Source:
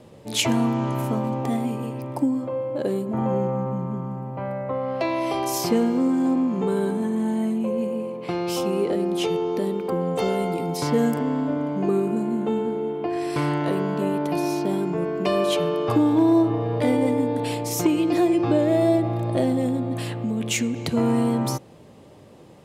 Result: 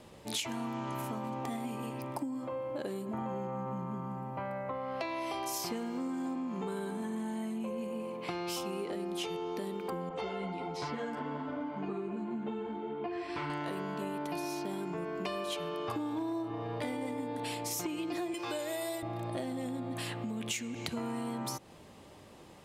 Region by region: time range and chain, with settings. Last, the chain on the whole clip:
0:10.09–0:13.50: low-pass filter 3,700 Hz + string-ensemble chorus
0:18.34–0:19.03: RIAA equalisation recording + comb filter 2 ms, depth 42%
whole clip: graphic EQ with 10 bands 125 Hz −9 dB, 250 Hz −4 dB, 500 Hz −7 dB; downward compressor, threshold −34 dBFS

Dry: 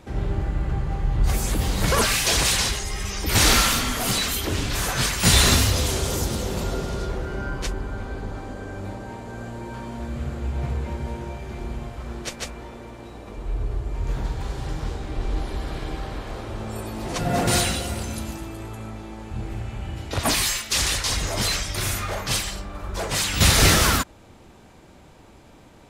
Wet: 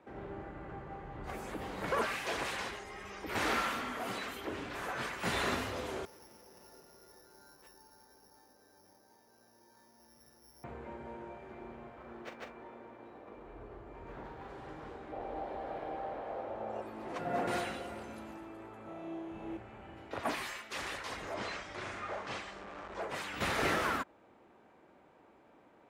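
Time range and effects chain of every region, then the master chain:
0:06.05–0:10.64: flat-topped bell 6,700 Hz −11 dB 2.3 octaves + tuned comb filter 890 Hz, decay 0.37 s, mix 90% + bad sample-rate conversion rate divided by 8×, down none, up zero stuff
0:11.52–0:14.49: running median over 5 samples + double-tracking delay 42 ms −11 dB
0:15.12–0:16.82: flat-topped bell 650 Hz +9 dB 1 octave + linearly interpolated sample-rate reduction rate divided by 3×
0:18.83–0:19.57: double-tracking delay 30 ms −5 dB + flutter between parallel walls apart 5.2 metres, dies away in 0.62 s
0:21.34–0:23.02: linear delta modulator 64 kbit/s, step −27.5 dBFS + low-pass filter 7,700 Hz 24 dB per octave
whole clip: high-pass filter 110 Hz 6 dB per octave; three-way crossover with the lows and the highs turned down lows −13 dB, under 240 Hz, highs −18 dB, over 2,400 Hz; level −9 dB

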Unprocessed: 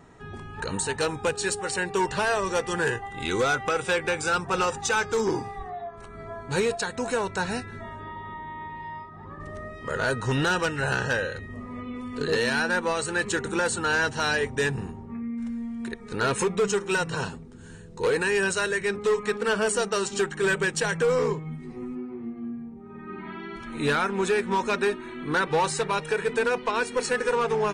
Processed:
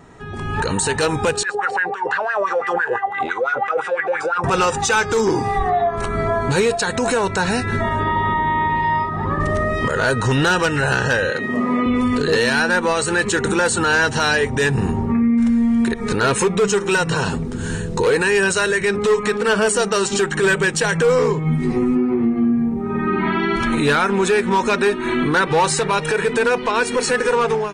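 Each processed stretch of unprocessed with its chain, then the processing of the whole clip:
0:01.43–0:04.44: compressor whose output falls as the input rises −30 dBFS + LFO wah 5.9 Hz 520–1,800 Hz, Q 5.1
0:11.30–0:11.86: high-pass filter 180 Hz 24 dB per octave + high-shelf EQ 8,900 Hz −10.5 dB
whole clip: downward compressor 6 to 1, threshold −34 dBFS; brickwall limiter −31 dBFS; automatic gain control gain up to 14 dB; level +6.5 dB

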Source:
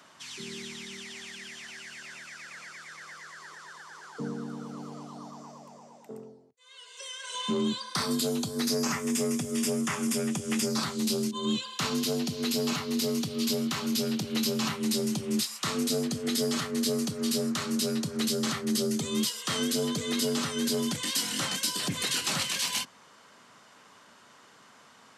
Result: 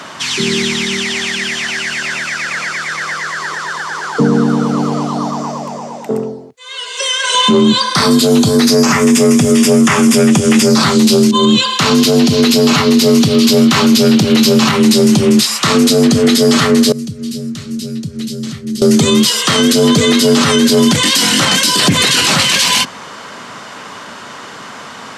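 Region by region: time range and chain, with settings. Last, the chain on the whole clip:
0:16.92–0:18.82: guitar amp tone stack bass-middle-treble 10-0-1 + one half of a high-frequency compander encoder only
whole clip: high-shelf EQ 8,400 Hz −9.5 dB; boost into a limiter +27 dB; level −1 dB

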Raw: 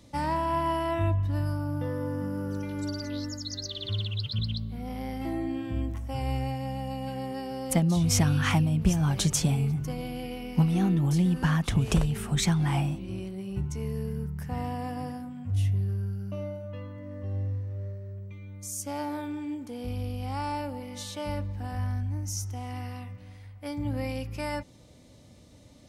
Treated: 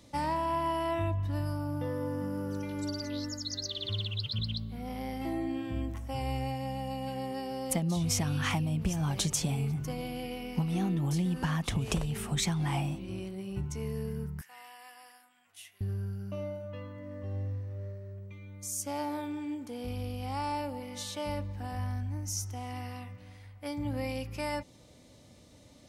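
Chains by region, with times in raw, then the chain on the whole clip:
0:14.41–0:15.81: Bessel high-pass filter 2,200 Hz + parametric band 5,000 Hz −5 dB 0.92 octaves
whole clip: low-shelf EQ 260 Hz −5 dB; downward compressor, threshold −26 dBFS; dynamic equaliser 1,500 Hz, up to −4 dB, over −52 dBFS, Q 3

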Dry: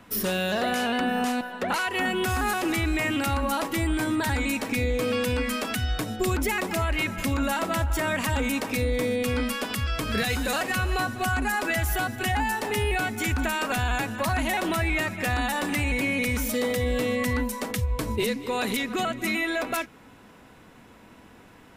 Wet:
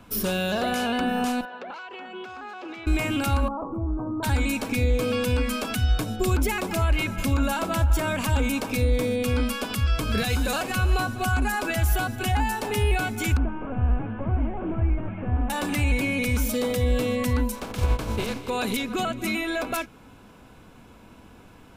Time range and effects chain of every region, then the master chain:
0:01.45–0:02.87: high-pass filter 380 Hz + downward compressor 12 to 1, threshold −32 dBFS + high-frequency loss of the air 190 metres
0:03.48–0:04.23: elliptic low-pass filter 1,200 Hz + downward compressor 2.5 to 1, threshold −29 dBFS
0:13.37–0:15.50: linear delta modulator 16 kbit/s, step −42.5 dBFS + high-frequency loss of the air 370 metres
0:17.54–0:18.48: compressing power law on the bin magnitudes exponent 0.48 + low-pass filter 1,600 Hz 6 dB per octave
whole clip: low-shelf EQ 100 Hz +9 dB; notch filter 1,900 Hz, Q 5.8

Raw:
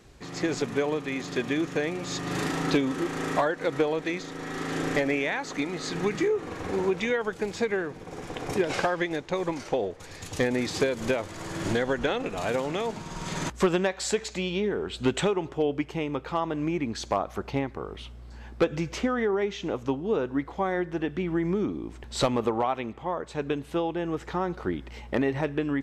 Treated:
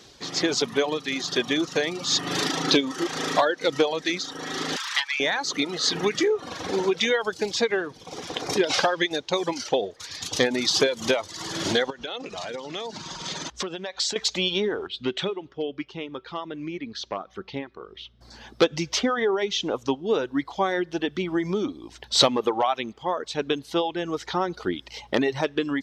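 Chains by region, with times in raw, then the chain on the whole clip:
0:04.76–0:05.20: linear-phase brick-wall high-pass 820 Hz + highs frequency-modulated by the lows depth 0.54 ms
0:11.90–0:14.16: low-pass filter 7,500 Hz + downward compressor 4 to 1, threshold −34 dBFS
0:14.87–0:18.21: low-pass filter 3,400 Hz + parametric band 810 Hz −6 dB 0.89 octaves + tuned comb filter 190 Hz, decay 0.58 s, mix 50%
whole clip: reverb reduction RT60 0.91 s; high-pass filter 250 Hz 6 dB per octave; flat-topped bell 4,400 Hz +9.5 dB 1.2 octaves; level +5 dB

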